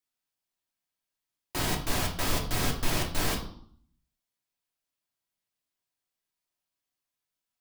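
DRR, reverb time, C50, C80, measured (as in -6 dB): 1.0 dB, 0.60 s, 9.0 dB, 12.5 dB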